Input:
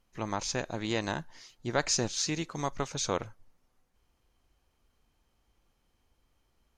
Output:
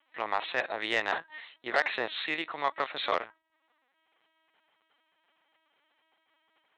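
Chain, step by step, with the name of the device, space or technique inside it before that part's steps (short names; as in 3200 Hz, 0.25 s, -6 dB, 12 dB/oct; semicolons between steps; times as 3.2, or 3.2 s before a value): talking toy (LPC vocoder at 8 kHz pitch kept; HPF 650 Hz 12 dB/oct; bell 1900 Hz +6.5 dB 0.25 oct; soft clip -22 dBFS, distortion -15 dB); gain +8 dB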